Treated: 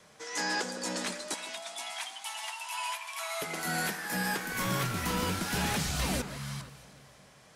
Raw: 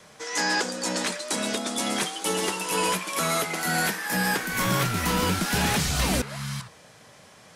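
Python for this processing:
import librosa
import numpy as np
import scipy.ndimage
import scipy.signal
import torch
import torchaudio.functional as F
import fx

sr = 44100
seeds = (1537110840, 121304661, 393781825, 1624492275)

y = fx.cheby_ripple_highpass(x, sr, hz=650.0, ripple_db=6, at=(1.34, 3.42))
y = fx.echo_alternate(y, sr, ms=159, hz=1600.0, feedback_pct=65, wet_db=-13.0)
y = F.gain(torch.from_numpy(y), -7.0).numpy()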